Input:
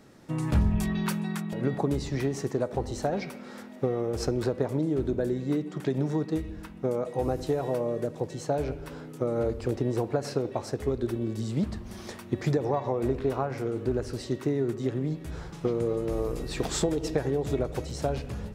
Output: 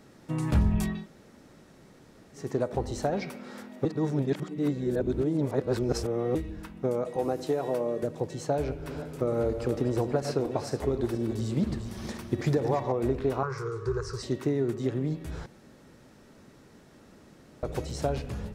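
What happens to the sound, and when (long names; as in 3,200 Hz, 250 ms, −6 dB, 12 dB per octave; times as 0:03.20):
0:00.96–0:02.43: fill with room tone, crossfade 0.24 s
0:03.85–0:06.35: reverse
0:07.16–0:08.03: high-pass filter 180 Hz
0:08.56–0:12.92: feedback delay that plays each chunk backwards 238 ms, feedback 45%, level −8.5 dB
0:13.43–0:14.23: drawn EQ curve 150 Hz 0 dB, 270 Hz −28 dB, 410 Hz +4 dB, 670 Hz −19 dB, 1,100 Hz +12 dB, 2,100 Hz −4 dB, 3,000 Hz −9 dB, 5,400 Hz +6 dB, 8,100 Hz 0 dB, 12,000 Hz −9 dB
0:15.46–0:17.63: fill with room tone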